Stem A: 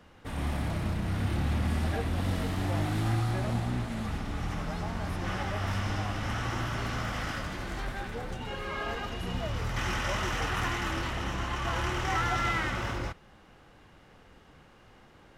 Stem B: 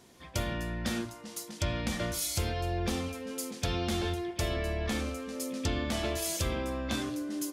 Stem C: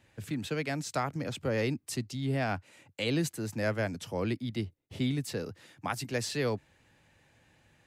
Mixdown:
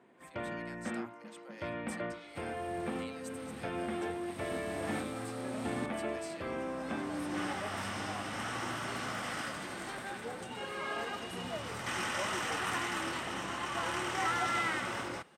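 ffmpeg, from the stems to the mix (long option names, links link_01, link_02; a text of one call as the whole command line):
ffmpeg -i stem1.wav -i stem2.wav -i stem3.wav -filter_complex "[0:a]adelay=2100,volume=-2.5dB[link_01];[1:a]lowpass=frequency=2300:width=0.5412,lowpass=frequency=2300:width=1.3066,volume=-2.5dB[link_02];[2:a]highpass=frequency=620:width=0.5412,highpass=frequency=620:width=1.3066,volume=-16.5dB,asplit=2[link_03][link_04];[link_04]apad=whole_len=770607[link_05];[link_01][link_05]sidechaincompress=threshold=-60dB:ratio=5:attack=12:release=942[link_06];[link_06][link_02][link_03]amix=inputs=3:normalize=0,highpass=210,equalizer=frequency=8500:width=6.4:gain=14.5" out.wav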